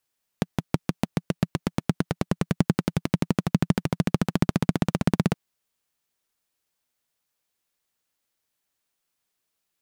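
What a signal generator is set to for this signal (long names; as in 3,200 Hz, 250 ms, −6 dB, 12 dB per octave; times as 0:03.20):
pulse-train model of a single-cylinder engine, changing speed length 4.92 s, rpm 700, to 2,000, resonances 170 Hz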